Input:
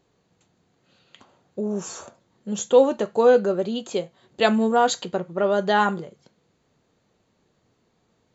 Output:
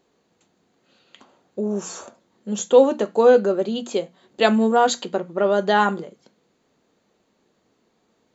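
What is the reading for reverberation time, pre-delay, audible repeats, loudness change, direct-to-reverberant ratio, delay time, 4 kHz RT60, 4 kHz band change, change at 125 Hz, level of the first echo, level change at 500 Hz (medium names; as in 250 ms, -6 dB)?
no reverb, no reverb, no echo, +2.0 dB, no reverb, no echo, no reverb, +1.5 dB, +0.5 dB, no echo, +2.0 dB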